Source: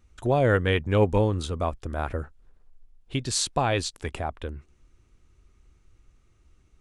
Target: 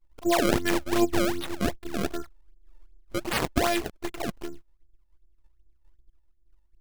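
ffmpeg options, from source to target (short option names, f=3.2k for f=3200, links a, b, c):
-af "anlmdn=0.1,afftfilt=real='hypot(re,im)*cos(PI*b)':imag='0':win_size=512:overlap=0.75,acrusher=samples=28:mix=1:aa=0.000001:lfo=1:lforange=44.8:lforate=2.6,volume=3.5dB"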